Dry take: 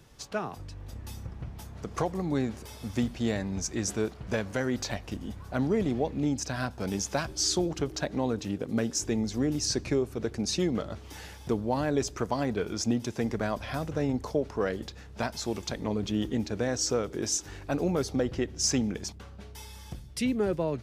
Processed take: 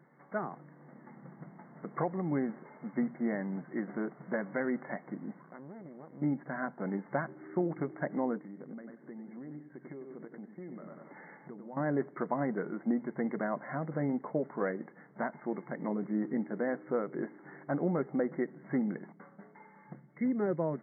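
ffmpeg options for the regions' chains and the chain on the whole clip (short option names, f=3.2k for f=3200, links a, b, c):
-filter_complex "[0:a]asettb=1/sr,asplit=3[a][b][c];[a]atrim=end=5.414[d];[b]atrim=start=5.41:end=6.22,asetpts=PTS-STARTPTS,afade=t=in:d=0.004:c=qsin,afade=t=out:st=0.806:d=0.004:c=qsin,acompressor=threshold=-39dB:ratio=5:attack=3.2:release=140:knee=1:detection=peak,aeval=exprs='max(val(0),0)':c=same[e];[c]atrim=start=6.216[f];[d][e]acrossfade=d=0.004:c1=hsin:c2=qsin[g];[g][f]acrossfade=d=0.004:c1=qsin:c2=hsin,asettb=1/sr,asplit=3[h][i][j];[h]atrim=end=8.374[k];[i]atrim=start=8.37:end=11.77,asetpts=PTS-STARTPTS,afade=t=in:d=0.004:c=qsin,afade=t=out:st=3.396:d=0.004:c=qsin,aecho=1:1:94|188|282|376:0.316|0.123|0.0481|0.0188,atrim=end_sample=149940,acompressor=threshold=-39dB:ratio=6:attack=3.2:release=140:knee=1:detection=peak[l];[j]atrim=start=11.766[m];[k][l]acrossfade=d=0.004:c1=hsin:c2=qsin[n];[n][m]acrossfade=d=0.004:c1=qsin:c2=hsin,bandreject=f=440:w=12,afftfilt=real='re*between(b*sr/4096,130,2200)':imag='im*between(b*sr/4096,130,2200)':win_size=4096:overlap=0.75,volume=-2.5dB"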